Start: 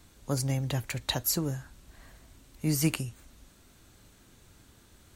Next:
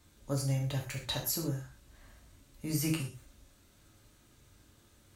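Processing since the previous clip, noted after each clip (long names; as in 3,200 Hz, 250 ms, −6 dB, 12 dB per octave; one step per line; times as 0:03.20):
reverb whose tail is shaped and stops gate 150 ms falling, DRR −0.5 dB
level −8 dB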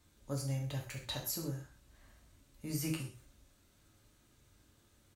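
single-tap delay 133 ms −21.5 dB
level −5 dB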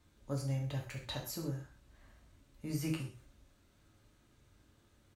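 high-shelf EQ 5,000 Hz −9 dB
level +1 dB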